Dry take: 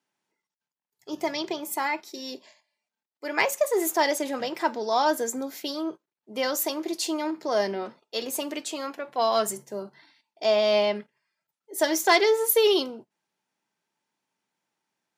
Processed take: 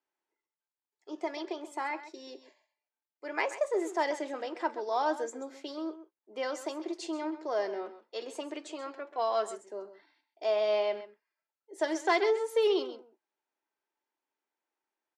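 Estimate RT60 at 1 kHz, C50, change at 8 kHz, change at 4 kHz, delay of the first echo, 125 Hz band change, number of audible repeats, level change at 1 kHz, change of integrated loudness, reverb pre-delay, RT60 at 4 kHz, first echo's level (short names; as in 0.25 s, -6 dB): none, none, -16.0 dB, -12.0 dB, 0.132 s, n/a, 1, -6.5 dB, -7.0 dB, none, none, -13.5 dB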